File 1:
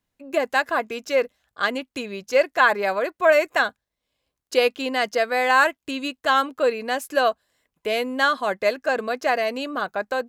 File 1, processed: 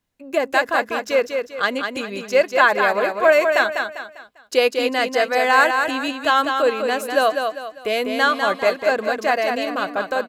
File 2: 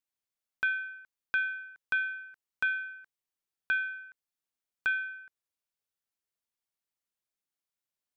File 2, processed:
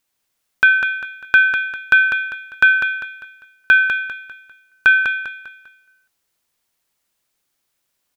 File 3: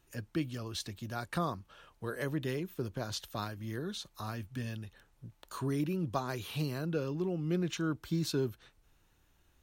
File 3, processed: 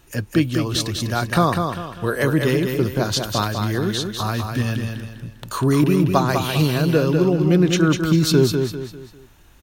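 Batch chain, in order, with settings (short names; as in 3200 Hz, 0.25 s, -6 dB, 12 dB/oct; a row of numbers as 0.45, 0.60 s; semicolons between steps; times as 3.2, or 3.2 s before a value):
feedback echo 0.199 s, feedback 37%, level -5.5 dB; normalise peaks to -2 dBFS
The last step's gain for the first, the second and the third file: +2.0, +17.0, +16.0 dB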